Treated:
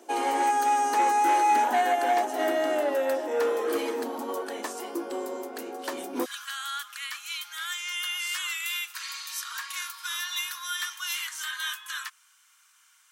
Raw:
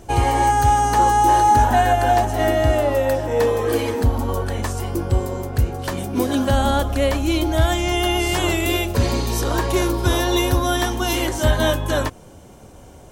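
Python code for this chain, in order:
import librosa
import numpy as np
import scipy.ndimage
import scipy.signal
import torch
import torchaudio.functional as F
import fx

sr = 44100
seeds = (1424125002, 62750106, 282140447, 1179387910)

y = fx.steep_highpass(x, sr, hz=fx.steps((0.0, 260.0), (6.24, 1200.0)), slope=48)
y = fx.transformer_sat(y, sr, knee_hz=960.0)
y = y * librosa.db_to_amplitude(-6.0)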